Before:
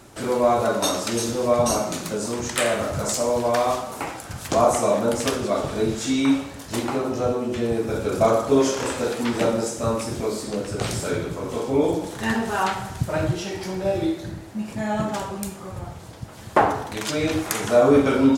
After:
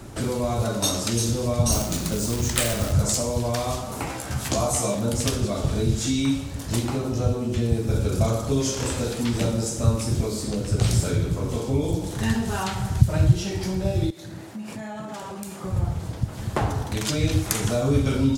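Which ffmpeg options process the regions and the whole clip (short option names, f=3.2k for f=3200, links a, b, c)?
-filter_complex "[0:a]asettb=1/sr,asplit=3[a][b][c];[a]atrim=end=1.724[d];[b]atrim=start=1.72:end=2.93,asetpts=PTS-STARTPTS,afade=t=in:d=0.004:c=qsin,afade=t=out:st=1.206:d=0.004:c=qsin,aeval=exprs='val(0)+0.00447*(sin(2*PI*60*n/s)+sin(2*PI*2*60*n/s)/2+sin(2*PI*3*60*n/s)/3+sin(2*PI*4*60*n/s)/4+sin(2*PI*5*60*n/s)/5)':c=same,acrusher=bits=2:mode=log:mix=0:aa=0.000001[e];[c]atrim=start=2.926[f];[d][e]acrossfade=d=0.004:c1=hsin:c2=qsin[g];[g][f]acrossfade=d=0.004:c1=qsin:c2=hsin,asettb=1/sr,asplit=3[h][i][j];[h]atrim=end=4.084[k];[i]atrim=start=4.08:end=4.95,asetpts=PTS-STARTPTS,afade=t=in:d=0.004:c=qsin,afade=t=out:st=0.866:d=0.004:c=qsin,lowshelf=f=140:g=-9.5,asplit=2[l][m];[m]adelay=15,volume=-2dB[n];[l][n]amix=inputs=2:normalize=0,atrim=end_sample=38367[o];[j]atrim=start=4.946[p];[k][o]acrossfade=d=0.004:c1=hsin:c2=qsin[q];[q][p]acrossfade=d=0.004:c1=qsin:c2=hsin,asettb=1/sr,asplit=3[r][s][t];[r]atrim=end=14.104[u];[s]atrim=start=14.1:end=15.64,asetpts=PTS-STARTPTS,afade=t=in:d=0.004:c=qsin,afade=t=out:st=1.536:d=0.004:c=qsin,highpass=130,acompressor=threshold=-32dB:ratio=5:attack=3.2:release=140:knee=1:detection=peak,lowshelf=f=390:g=-9.5[v];[t]atrim=start=15.636[w];[u][v]acrossfade=d=0.004:c1=hsin:c2=qsin[x];[x][w]acrossfade=d=0.004:c1=qsin:c2=hsin,lowshelf=f=250:g=11.5,acrossover=split=140|3000[y][z][aa];[z]acompressor=threshold=-33dB:ratio=2.5[ab];[y][ab][aa]amix=inputs=3:normalize=0,volume=2dB"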